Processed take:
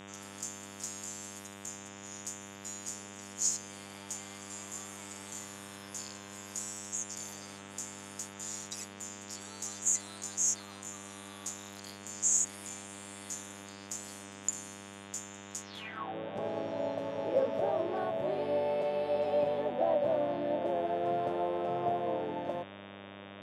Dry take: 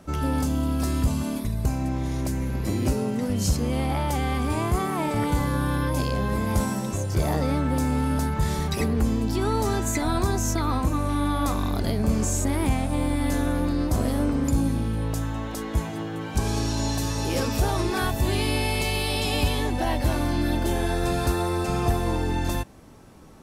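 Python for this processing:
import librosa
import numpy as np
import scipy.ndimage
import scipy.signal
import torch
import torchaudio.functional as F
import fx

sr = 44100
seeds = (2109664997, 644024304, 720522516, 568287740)

y = fx.filter_sweep_bandpass(x, sr, from_hz=6900.0, to_hz=590.0, start_s=15.63, end_s=16.15, q=7.3)
y = fx.dmg_buzz(y, sr, base_hz=100.0, harmonics=37, level_db=-56.0, tilt_db=-3, odd_only=False)
y = fx.low_shelf_res(y, sr, hz=100.0, db=-10.5, q=3.0)
y = y * librosa.db_to_amplitude(7.0)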